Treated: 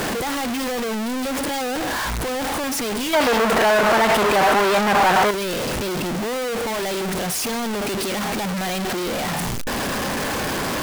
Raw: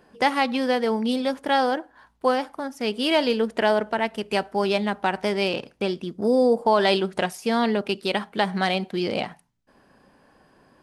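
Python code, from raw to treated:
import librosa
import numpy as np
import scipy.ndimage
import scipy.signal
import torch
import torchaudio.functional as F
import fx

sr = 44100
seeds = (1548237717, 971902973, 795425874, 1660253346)

y = np.sign(x) * np.sqrt(np.mean(np.square(x)))
y = fx.peak_eq(y, sr, hz=1100.0, db=12.0, octaves=2.9, at=(3.13, 5.31))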